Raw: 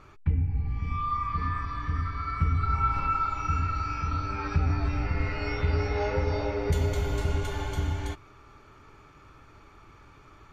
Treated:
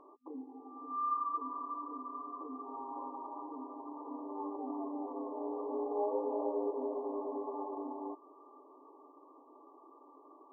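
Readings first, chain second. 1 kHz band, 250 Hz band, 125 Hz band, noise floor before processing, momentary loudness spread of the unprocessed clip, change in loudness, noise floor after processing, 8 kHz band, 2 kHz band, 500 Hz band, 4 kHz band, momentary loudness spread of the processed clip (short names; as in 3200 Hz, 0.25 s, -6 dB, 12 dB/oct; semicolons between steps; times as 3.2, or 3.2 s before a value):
-8.0 dB, -4.5 dB, under -40 dB, -54 dBFS, 5 LU, -10.5 dB, -60 dBFS, under -30 dB, under -40 dB, -3.0 dB, under -40 dB, 23 LU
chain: FFT band-pass 250–1200 Hz; in parallel at -2 dB: compressor, threshold -42 dBFS, peak gain reduction 15 dB; on the sum: gain -5 dB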